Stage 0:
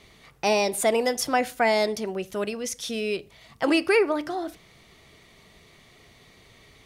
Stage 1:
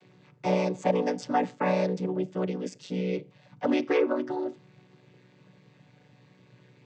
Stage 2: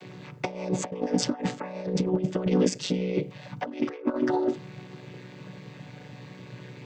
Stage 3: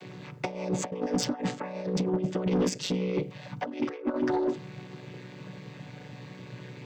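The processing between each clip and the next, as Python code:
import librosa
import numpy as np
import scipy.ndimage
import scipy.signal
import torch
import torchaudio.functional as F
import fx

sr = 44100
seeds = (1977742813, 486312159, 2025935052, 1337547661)

y1 = fx.chord_vocoder(x, sr, chord='minor triad', root=47)
y1 = y1 * librosa.db_to_amplitude(-2.0)
y2 = fx.over_compress(y1, sr, threshold_db=-33.0, ratio=-0.5)
y2 = y2 * librosa.db_to_amplitude(7.0)
y3 = 10.0 ** (-19.5 / 20.0) * np.tanh(y2 / 10.0 ** (-19.5 / 20.0))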